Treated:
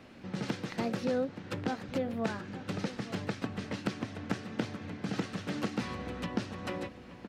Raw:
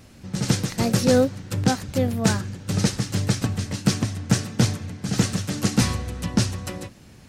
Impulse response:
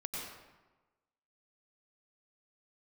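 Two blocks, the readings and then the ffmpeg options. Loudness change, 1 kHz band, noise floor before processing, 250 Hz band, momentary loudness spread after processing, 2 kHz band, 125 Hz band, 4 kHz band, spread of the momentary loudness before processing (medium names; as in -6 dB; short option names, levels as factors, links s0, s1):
-13.0 dB, -8.5 dB, -48 dBFS, -11.5 dB, 6 LU, -8.5 dB, -17.0 dB, -15.0 dB, 8 LU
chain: -filter_complex "[0:a]acompressor=threshold=0.0447:ratio=6,acrossover=split=190 3800:gain=0.2 1 0.112[s0][s1][s2];[s0][s1][s2]amix=inputs=3:normalize=0,asplit=2[s3][s4];[s4]adelay=874.6,volume=0.224,highshelf=f=4000:g=-19.7[s5];[s3][s5]amix=inputs=2:normalize=0"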